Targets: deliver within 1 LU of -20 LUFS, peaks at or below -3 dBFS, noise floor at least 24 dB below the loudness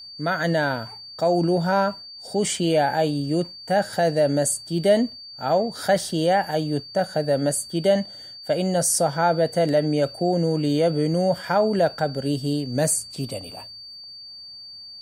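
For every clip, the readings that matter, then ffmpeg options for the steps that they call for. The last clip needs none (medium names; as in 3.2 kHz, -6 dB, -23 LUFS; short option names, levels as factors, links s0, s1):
steady tone 4.6 kHz; tone level -38 dBFS; loudness -22.5 LUFS; peak level -8.0 dBFS; loudness target -20.0 LUFS
-> -af "bandreject=f=4600:w=30"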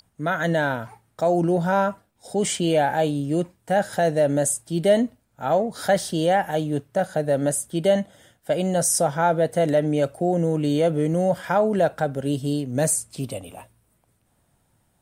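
steady tone not found; loudness -22.5 LUFS; peak level -8.0 dBFS; loudness target -20.0 LUFS
-> -af "volume=1.33"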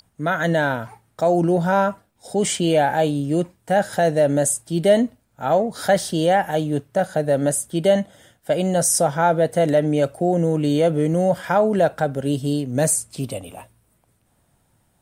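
loudness -20.0 LUFS; peak level -5.5 dBFS; noise floor -64 dBFS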